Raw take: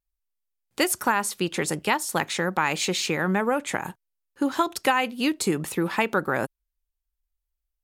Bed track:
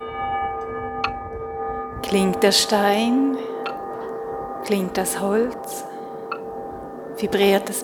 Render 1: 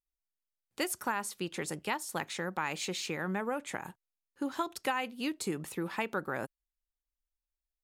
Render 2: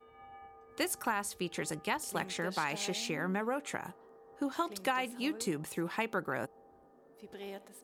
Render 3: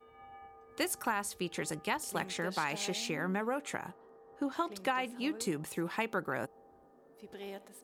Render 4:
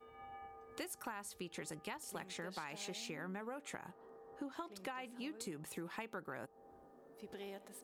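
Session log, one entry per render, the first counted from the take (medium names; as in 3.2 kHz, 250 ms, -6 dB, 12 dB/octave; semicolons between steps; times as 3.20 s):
trim -10.5 dB
add bed track -28 dB
3.84–5.34 s: treble shelf 5.7 kHz -7.5 dB
compression 3:1, threshold -46 dBFS, peak gain reduction 14 dB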